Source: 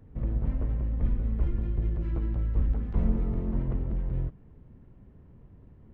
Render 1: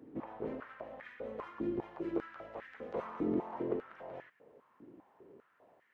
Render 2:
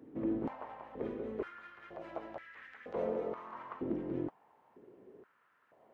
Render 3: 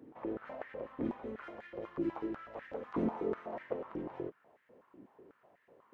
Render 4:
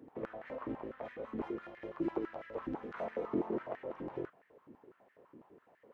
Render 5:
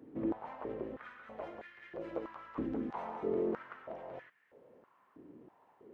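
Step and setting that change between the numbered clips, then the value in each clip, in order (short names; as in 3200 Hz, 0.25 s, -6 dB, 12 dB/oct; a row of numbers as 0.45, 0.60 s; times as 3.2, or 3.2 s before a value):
stepped high-pass, rate: 5, 2.1, 8.1, 12, 3.1 Hz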